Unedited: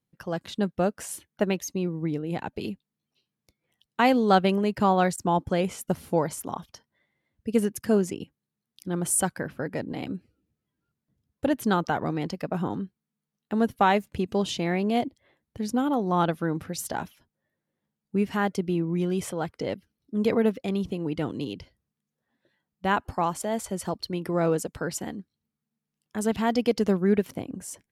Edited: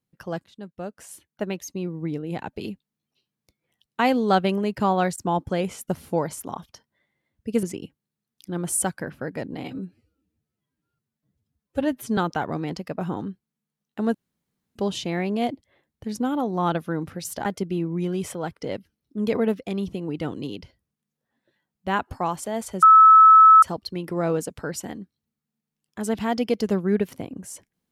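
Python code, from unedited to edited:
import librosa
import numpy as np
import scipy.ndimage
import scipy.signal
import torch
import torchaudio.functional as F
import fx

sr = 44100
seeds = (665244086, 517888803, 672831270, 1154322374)

y = fx.edit(x, sr, fx.fade_in_from(start_s=0.44, length_s=1.71, floor_db=-17.5),
    fx.cut(start_s=7.63, length_s=0.38),
    fx.stretch_span(start_s=10.02, length_s=1.69, factor=1.5),
    fx.room_tone_fill(start_s=13.68, length_s=0.61),
    fx.cut(start_s=16.99, length_s=1.44),
    fx.insert_tone(at_s=23.8, length_s=0.8, hz=1300.0, db=-7.5), tone=tone)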